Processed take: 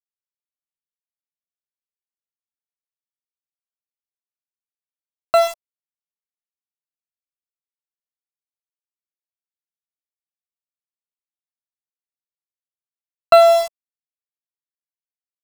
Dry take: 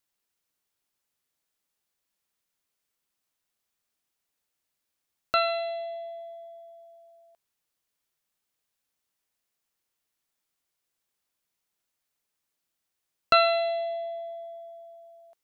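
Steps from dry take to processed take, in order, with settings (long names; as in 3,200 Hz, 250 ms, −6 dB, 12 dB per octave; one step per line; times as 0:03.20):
notch filter 420 Hz, Q 12
centre clipping without the shift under −24.5 dBFS
flat-topped bell 840 Hz +14.5 dB 1.1 octaves
level +1 dB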